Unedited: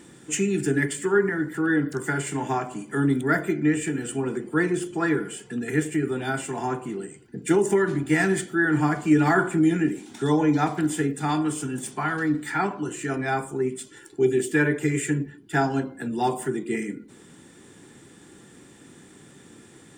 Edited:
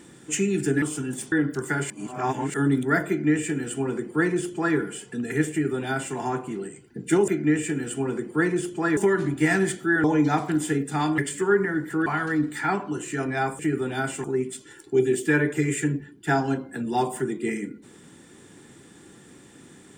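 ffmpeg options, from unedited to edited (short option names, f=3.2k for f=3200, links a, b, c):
-filter_complex "[0:a]asplit=12[a][b][c][d][e][f][g][h][i][j][k][l];[a]atrim=end=0.822[m];[b]atrim=start=11.468:end=11.972[n];[c]atrim=start=1.698:end=2.282[o];[d]atrim=start=2.278:end=2.922,asetpts=PTS-STARTPTS,areverse[p];[e]atrim=start=2.918:end=7.662[q];[f]atrim=start=3.458:end=5.152[r];[g]atrim=start=7.658:end=8.732[s];[h]atrim=start=10.328:end=11.472[t];[i]atrim=start=0.818:end=1.702[u];[j]atrim=start=11.968:end=13.502[v];[k]atrim=start=5.888:end=6.542[w];[l]atrim=start=13.498[x];[m][n]acrossfade=d=0.004:c1=hsin:c2=hsin[y];[y][o]acrossfade=d=0.004:c1=hsin:c2=hsin[z];[z][p]acrossfade=d=0.004:c1=hsin:c2=hsin[aa];[aa][q]acrossfade=d=0.004:c1=hsin:c2=hsin[ab];[ab][r]acrossfade=d=0.004:c1=hsin:c2=hsin[ac];[ac][s]acrossfade=d=0.004:c1=hsin:c2=hsin[ad];[ad][t]acrossfade=d=0.004:c1=hsin:c2=hsin[ae];[ae][u]acrossfade=d=0.004:c1=hsin:c2=hsin[af];[af][v]acrossfade=d=0.004:c1=hsin:c2=hsin[ag];[ag][w]acrossfade=d=0.004:c1=hsin:c2=hsin[ah];[ah][x]acrossfade=d=0.004:c1=hsin:c2=hsin"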